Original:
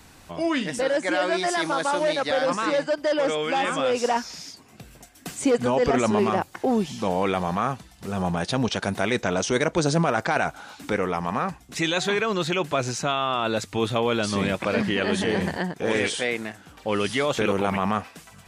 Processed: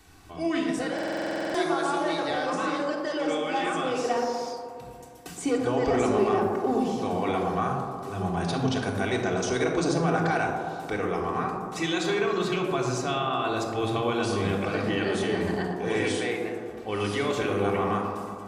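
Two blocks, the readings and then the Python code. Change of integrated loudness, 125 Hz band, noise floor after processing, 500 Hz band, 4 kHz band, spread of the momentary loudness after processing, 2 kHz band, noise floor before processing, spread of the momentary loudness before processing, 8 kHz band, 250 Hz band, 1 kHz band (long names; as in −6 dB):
−3.0 dB, −1.5 dB, −41 dBFS, −2.5 dB, −5.0 dB, 7 LU, −4.0 dB, −51 dBFS, 7 LU, −5.5 dB, −1.5 dB, −2.0 dB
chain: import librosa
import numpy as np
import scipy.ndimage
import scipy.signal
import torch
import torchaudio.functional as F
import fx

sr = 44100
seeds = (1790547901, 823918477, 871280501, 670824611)

y = fx.echo_wet_bandpass(x, sr, ms=120, feedback_pct=70, hz=560.0, wet_db=-4)
y = fx.room_shoebox(y, sr, seeds[0], volume_m3=3100.0, walls='furnished', distance_m=3.5)
y = fx.buffer_glitch(y, sr, at_s=(0.94,), block=2048, repeats=12)
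y = y * 10.0 ** (-7.5 / 20.0)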